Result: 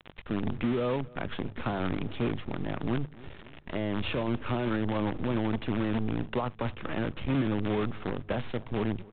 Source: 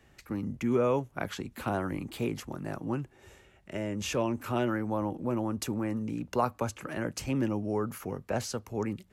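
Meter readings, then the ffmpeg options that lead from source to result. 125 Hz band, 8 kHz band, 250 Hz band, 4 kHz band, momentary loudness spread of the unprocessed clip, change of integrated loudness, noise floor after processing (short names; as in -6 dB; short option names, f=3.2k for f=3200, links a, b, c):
+3.0 dB, under -35 dB, +1.5 dB, +1.5 dB, 8 LU, +0.5 dB, -50 dBFS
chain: -filter_complex "[0:a]acrusher=bits=6:dc=4:mix=0:aa=0.000001,acompressor=threshold=-29dB:ratio=6,lowshelf=f=260:g=6,alimiter=level_in=2.5dB:limit=-24dB:level=0:latency=1:release=26,volume=-2.5dB,bandreject=f=50:t=h:w=6,bandreject=f=100:t=h:w=6,bandreject=f=150:t=h:w=6,asplit=2[a][b];[b]adelay=270,lowpass=f=1.7k:p=1,volume=-22dB,asplit=2[c][d];[d]adelay=270,lowpass=f=1.7k:p=1,volume=0.41,asplit=2[e][f];[f]adelay=270,lowpass=f=1.7k:p=1,volume=0.41[g];[c][e][g]amix=inputs=3:normalize=0[h];[a][h]amix=inputs=2:normalize=0,acompressor=mode=upward:threshold=-41dB:ratio=2.5,volume=6dB" -ar 8000 -c:a pcm_mulaw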